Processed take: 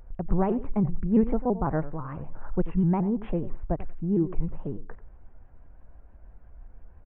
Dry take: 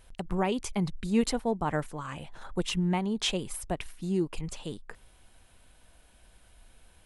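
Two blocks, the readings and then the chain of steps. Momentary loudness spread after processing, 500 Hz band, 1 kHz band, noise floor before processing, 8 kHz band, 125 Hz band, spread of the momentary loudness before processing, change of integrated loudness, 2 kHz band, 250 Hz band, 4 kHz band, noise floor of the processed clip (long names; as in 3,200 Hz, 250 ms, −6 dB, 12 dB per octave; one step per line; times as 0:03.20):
13 LU, +2.5 dB, +0.5 dB, −60 dBFS, below −40 dB, +5.0 dB, 12 LU, +3.0 dB, −8.5 dB, +4.5 dB, below −25 dB, −51 dBFS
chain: Gaussian smoothing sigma 6.1 samples
low-shelf EQ 89 Hz +9.5 dB
repeating echo 92 ms, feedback 17%, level −15.5 dB
pitch modulation by a square or saw wave saw up 6 Hz, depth 160 cents
level +3 dB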